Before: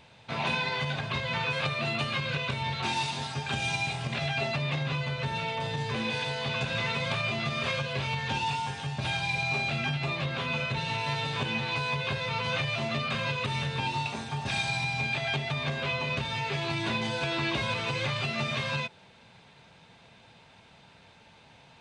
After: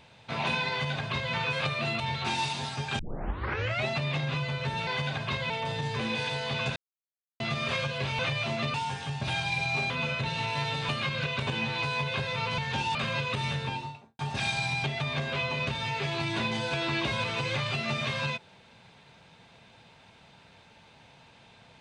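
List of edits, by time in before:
0:00.70–0:01.33: duplicate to 0:05.45
0:02.00–0:02.58: move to 0:11.40
0:03.57: tape start 0.89 s
0:06.71–0:07.35: silence
0:08.14–0:08.51: swap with 0:12.51–0:13.06
0:09.67–0:10.41: remove
0:13.64–0:14.30: fade out and dull
0:14.95–0:15.34: remove

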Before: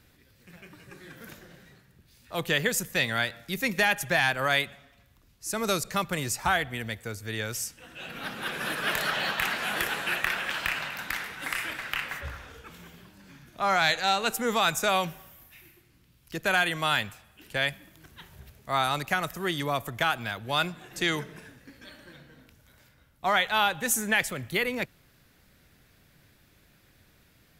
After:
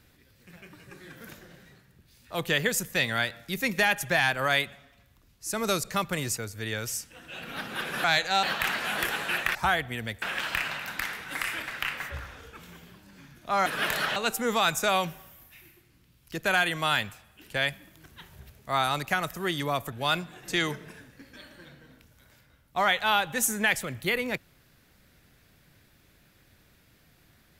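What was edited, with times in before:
0:06.37–0:07.04: move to 0:10.33
0:08.71–0:09.21: swap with 0:13.77–0:14.16
0:19.92–0:20.40: remove

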